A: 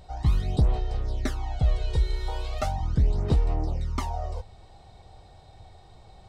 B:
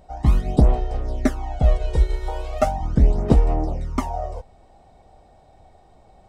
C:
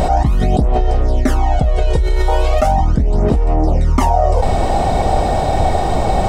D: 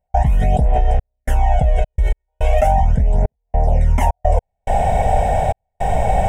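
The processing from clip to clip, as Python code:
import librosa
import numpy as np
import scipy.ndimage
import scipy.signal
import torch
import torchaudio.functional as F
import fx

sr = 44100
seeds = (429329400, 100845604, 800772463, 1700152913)

y1 = fx.graphic_eq_15(x, sr, hz=(100, 250, 630, 4000), db=(-7, 7, 6, -9))
y1 = fx.upward_expand(y1, sr, threshold_db=-38.0, expansion=1.5)
y1 = F.gain(torch.from_numpy(y1), 8.5).numpy()
y2 = fx.env_flatten(y1, sr, amount_pct=100)
y2 = F.gain(torch.from_numpy(y2), -3.0).numpy()
y3 = fx.step_gate(y2, sr, bpm=106, pattern='.xxxxxx..xxxx.x.', floor_db=-60.0, edge_ms=4.5)
y3 = fx.fixed_phaser(y3, sr, hz=1200.0, stages=6)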